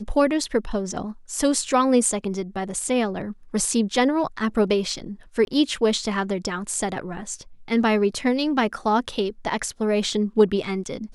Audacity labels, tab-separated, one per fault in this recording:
5.450000	5.470000	drop-out 22 ms

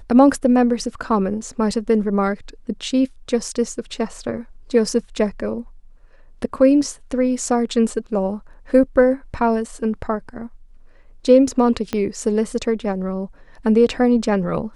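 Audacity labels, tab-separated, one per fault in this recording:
11.930000	11.930000	click −9 dBFS

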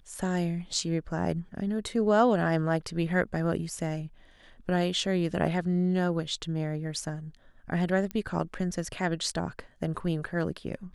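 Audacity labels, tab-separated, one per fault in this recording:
8.110000	8.110000	click −20 dBFS

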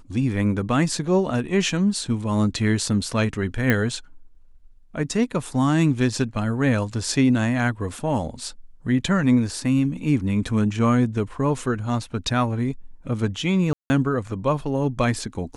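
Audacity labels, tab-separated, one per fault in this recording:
3.700000	3.700000	click −7 dBFS
13.730000	13.900000	drop-out 170 ms

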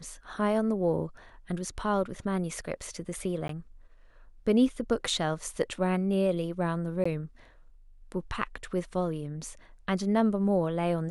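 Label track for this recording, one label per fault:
3.480000	3.490000	drop-out
7.040000	7.050000	drop-out 15 ms

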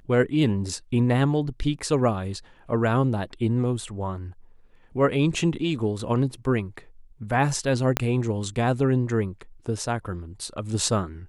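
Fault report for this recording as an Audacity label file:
7.970000	7.970000	click −5 dBFS

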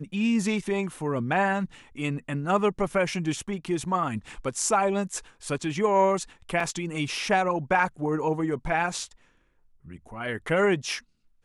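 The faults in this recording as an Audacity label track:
6.600000	6.600000	drop-out 3.5 ms

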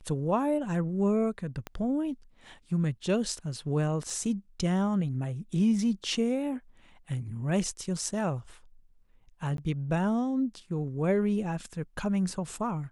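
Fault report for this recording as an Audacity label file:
1.670000	1.670000	click −22 dBFS
4.100000	4.100000	drop-out 2.5 ms
9.570000	9.580000	drop-out 12 ms

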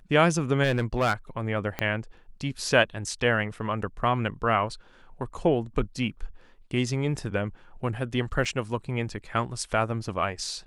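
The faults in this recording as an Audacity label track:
0.630000	1.130000	clipping −18.5 dBFS
1.790000	1.790000	click −14 dBFS
8.450000	8.460000	drop-out 5.3 ms

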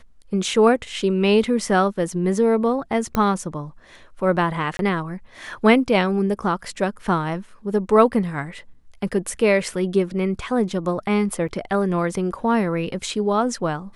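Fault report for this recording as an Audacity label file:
3.150000	3.150000	click −10 dBFS
4.770000	4.790000	drop-out 22 ms
11.480000	11.490000	drop-out 5.9 ms

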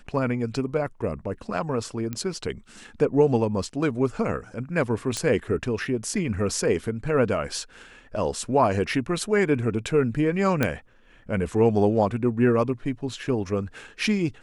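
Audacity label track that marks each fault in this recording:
2.130000	2.130000	click −17 dBFS
5.170000	5.170000	click −13 dBFS
10.630000	10.630000	click −8 dBFS

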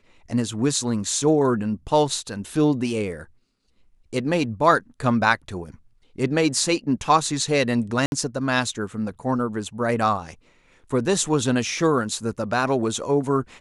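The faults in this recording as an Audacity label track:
8.060000	8.120000	drop-out 61 ms

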